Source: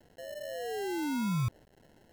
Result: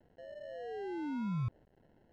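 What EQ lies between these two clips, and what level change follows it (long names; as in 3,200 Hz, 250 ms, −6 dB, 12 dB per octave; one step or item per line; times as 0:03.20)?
head-to-tape spacing loss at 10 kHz 31 dB
−4.0 dB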